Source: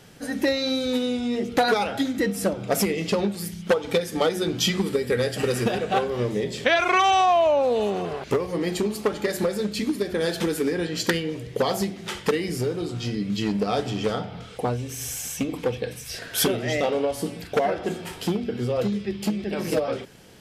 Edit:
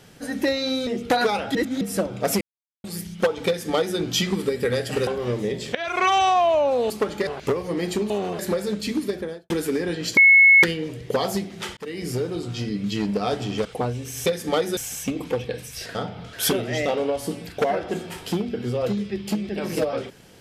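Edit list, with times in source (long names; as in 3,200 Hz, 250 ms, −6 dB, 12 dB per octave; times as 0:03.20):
0:00.87–0:01.34: remove
0:02.02–0:02.28: reverse
0:02.88–0:03.31: silence
0:03.94–0:04.45: duplicate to 0:15.10
0:05.54–0:05.99: remove
0:06.67–0:06.98: fade in, from −18 dB
0:07.82–0:08.11: swap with 0:08.94–0:09.31
0:09.98–0:10.42: fade out and dull
0:11.09: insert tone 2,190 Hz −9 dBFS 0.46 s
0:12.23–0:12.55: fade in
0:14.11–0:14.49: move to 0:16.28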